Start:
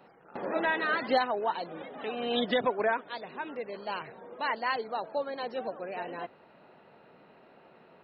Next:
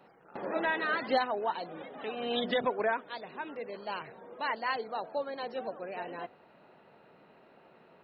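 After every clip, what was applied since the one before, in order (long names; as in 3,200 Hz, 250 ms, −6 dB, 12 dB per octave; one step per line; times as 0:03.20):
hum removal 244.1 Hz, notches 3
level −2 dB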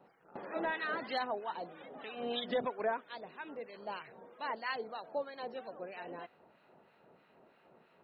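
two-band tremolo in antiphase 3.1 Hz, crossover 1,200 Hz
level −2 dB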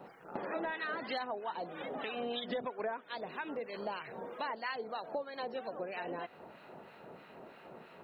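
downward compressor 4 to 1, threshold −49 dBFS, peak gain reduction 17 dB
level +11.5 dB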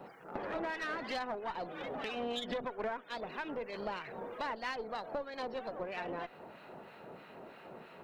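one-sided soft clipper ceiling −39 dBFS
level +2 dB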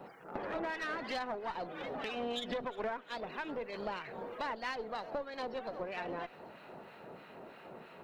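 delay with a high-pass on its return 356 ms, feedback 65%, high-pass 2,000 Hz, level −20 dB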